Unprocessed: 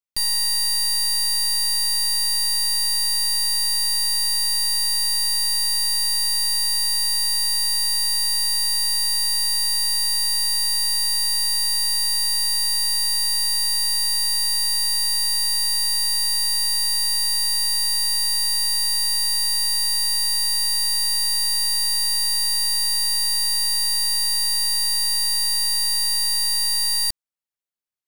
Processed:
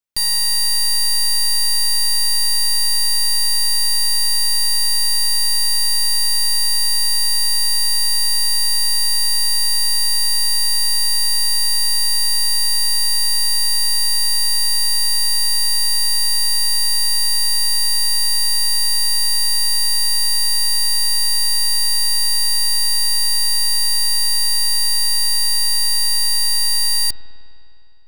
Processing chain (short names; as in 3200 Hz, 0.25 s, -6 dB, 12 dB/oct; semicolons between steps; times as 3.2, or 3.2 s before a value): spring tank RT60 2.9 s, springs 51 ms, chirp 55 ms, DRR 9.5 dB; gain +3.5 dB